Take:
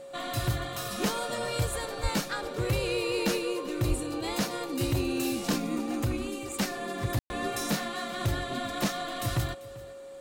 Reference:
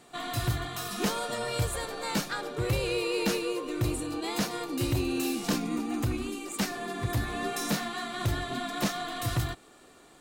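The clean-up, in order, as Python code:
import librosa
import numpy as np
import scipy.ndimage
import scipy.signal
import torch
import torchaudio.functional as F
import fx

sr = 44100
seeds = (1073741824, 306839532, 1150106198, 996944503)

y = fx.notch(x, sr, hz=550.0, q=30.0)
y = fx.fix_deplosive(y, sr, at_s=(2.02, 3.88))
y = fx.fix_ambience(y, sr, seeds[0], print_start_s=9.69, print_end_s=10.19, start_s=7.19, end_s=7.3)
y = fx.fix_echo_inverse(y, sr, delay_ms=392, level_db=-19.5)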